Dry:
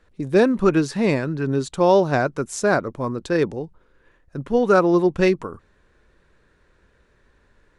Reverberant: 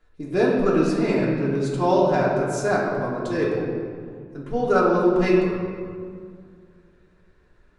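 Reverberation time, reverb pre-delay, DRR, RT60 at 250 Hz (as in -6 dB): 2.0 s, 3 ms, -7.0 dB, 2.8 s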